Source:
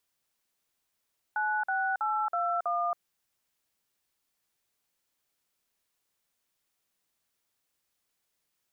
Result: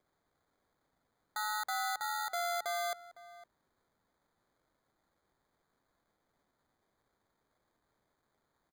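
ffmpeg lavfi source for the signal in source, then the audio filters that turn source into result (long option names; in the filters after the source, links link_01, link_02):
-f lavfi -i "aevalsrc='0.0355*clip(min(mod(t,0.324),0.275-mod(t,0.324))/0.002,0,1)*(eq(floor(t/0.324),0)*(sin(2*PI*852*mod(t,0.324))+sin(2*PI*1477*mod(t,0.324)))+eq(floor(t/0.324),1)*(sin(2*PI*770*mod(t,0.324))+sin(2*PI*1477*mod(t,0.324)))+eq(floor(t/0.324),2)*(sin(2*PI*852*mod(t,0.324))+sin(2*PI*1336*mod(t,0.324)))+eq(floor(t/0.324),3)*(sin(2*PI*697*mod(t,0.324))+sin(2*PI*1336*mod(t,0.324)))+eq(floor(t/0.324),4)*(sin(2*PI*697*mod(t,0.324))+sin(2*PI*1209*mod(t,0.324))))':duration=1.62:sample_rate=44100"
-filter_complex "[0:a]equalizer=frequency=1100:width=1.5:gain=-11.5,acrusher=samples=16:mix=1:aa=0.000001,asplit=2[link_01][link_02];[link_02]adelay=507.3,volume=-17dB,highshelf=frequency=4000:gain=-11.4[link_03];[link_01][link_03]amix=inputs=2:normalize=0"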